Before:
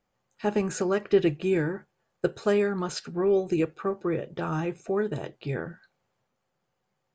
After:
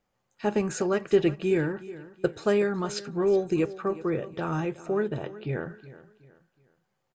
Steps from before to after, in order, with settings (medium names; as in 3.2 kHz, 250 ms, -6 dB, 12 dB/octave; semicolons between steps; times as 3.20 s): 5.08–5.61 s: low-pass 4.3 kHz -> 2.7 kHz 12 dB/octave; feedback delay 370 ms, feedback 36%, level -17 dB